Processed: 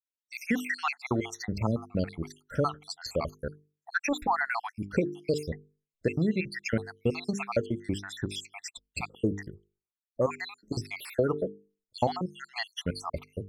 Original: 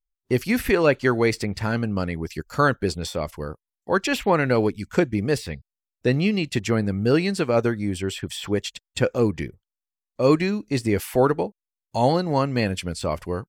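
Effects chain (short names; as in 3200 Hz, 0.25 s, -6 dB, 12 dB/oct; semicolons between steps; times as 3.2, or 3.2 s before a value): random spectral dropouts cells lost 70%; high shelf 11000 Hz -11 dB; notches 50/100/150/200/250/300/350/400/450 Hz; compressor, threshold -22 dBFS, peak gain reduction 7.5 dB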